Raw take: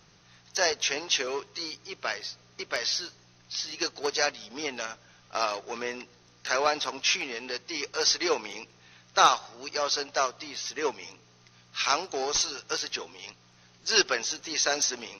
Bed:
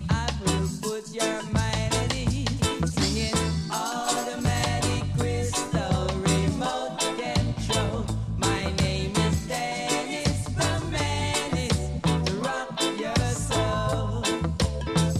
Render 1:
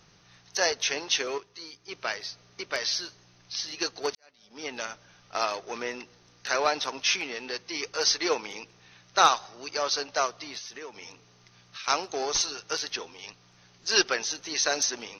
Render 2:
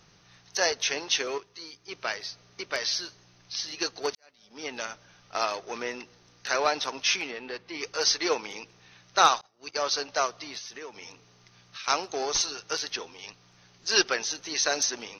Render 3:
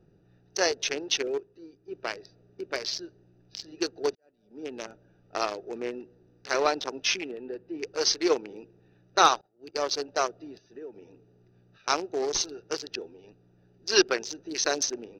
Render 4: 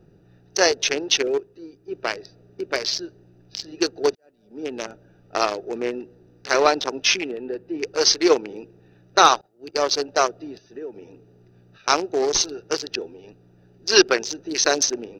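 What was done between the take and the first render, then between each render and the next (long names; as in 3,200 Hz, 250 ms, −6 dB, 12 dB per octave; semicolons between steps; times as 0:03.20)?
0:01.38–0:01.88: clip gain −7.5 dB; 0:04.15–0:04.77: fade in quadratic; 0:10.58–0:11.88: downward compressor 5 to 1, threshold −38 dBFS
0:07.31–0:07.81: high-frequency loss of the air 220 metres; 0:09.41–0:09.91: downward expander −36 dBFS
adaptive Wiener filter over 41 samples; parametric band 360 Hz +7.5 dB 0.74 octaves
level +7.5 dB; brickwall limiter −1 dBFS, peak gain reduction 2.5 dB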